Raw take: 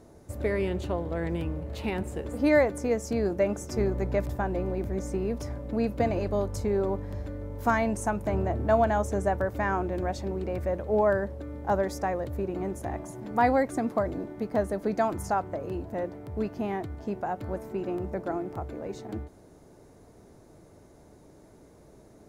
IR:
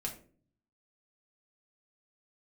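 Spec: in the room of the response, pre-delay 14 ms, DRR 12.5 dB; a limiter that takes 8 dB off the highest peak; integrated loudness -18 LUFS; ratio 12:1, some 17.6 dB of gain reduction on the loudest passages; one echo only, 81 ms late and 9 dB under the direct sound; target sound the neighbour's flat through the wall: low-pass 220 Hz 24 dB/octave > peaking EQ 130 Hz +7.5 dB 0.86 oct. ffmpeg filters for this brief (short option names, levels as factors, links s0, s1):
-filter_complex "[0:a]acompressor=threshold=0.0158:ratio=12,alimiter=level_in=2.51:limit=0.0631:level=0:latency=1,volume=0.398,aecho=1:1:81:0.355,asplit=2[s0][s1];[1:a]atrim=start_sample=2205,adelay=14[s2];[s1][s2]afir=irnorm=-1:irlink=0,volume=0.237[s3];[s0][s3]amix=inputs=2:normalize=0,lowpass=f=220:w=0.5412,lowpass=f=220:w=1.3066,equalizer=f=130:t=o:w=0.86:g=7.5,volume=15.8"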